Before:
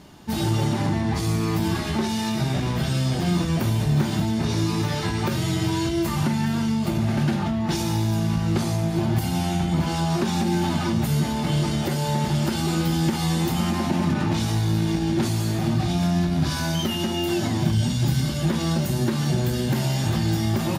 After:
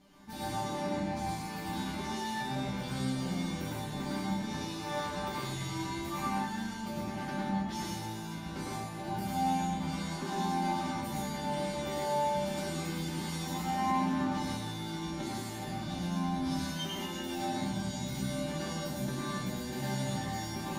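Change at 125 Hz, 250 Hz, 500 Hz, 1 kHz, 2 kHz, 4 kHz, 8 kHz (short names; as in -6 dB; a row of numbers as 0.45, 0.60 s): -16.5, -12.0, -9.5, -4.0, -8.5, -10.5, -9.5 dB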